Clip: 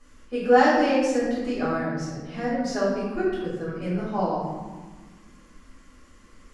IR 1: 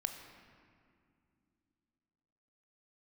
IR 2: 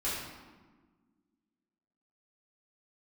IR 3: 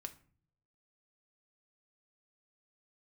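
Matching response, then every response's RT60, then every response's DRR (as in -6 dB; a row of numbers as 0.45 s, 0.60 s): 2; 2.4 s, 1.4 s, 0.45 s; 5.5 dB, -10.5 dB, 6.5 dB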